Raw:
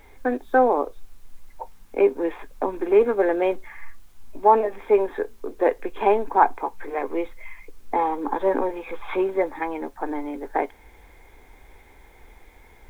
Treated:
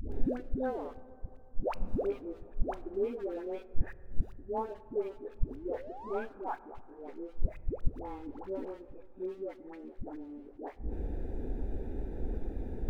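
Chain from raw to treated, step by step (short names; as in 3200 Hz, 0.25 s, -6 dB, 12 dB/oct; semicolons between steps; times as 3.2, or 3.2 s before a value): Wiener smoothing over 41 samples; graphic EQ 250/1000/2000 Hz +6/-5/-4 dB; painted sound rise, 5.48–6.14, 240–1700 Hz -29 dBFS; in parallel at -4 dB: crossover distortion -40.5 dBFS; on the sum: flipped gate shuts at -29 dBFS, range -35 dB; dispersion highs, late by 0.122 s, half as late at 520 Hz; on a send at -15.5 dB: reverb RT60 3.0 s, pre-delay 6 ms; on the sum: gain +14.5 dB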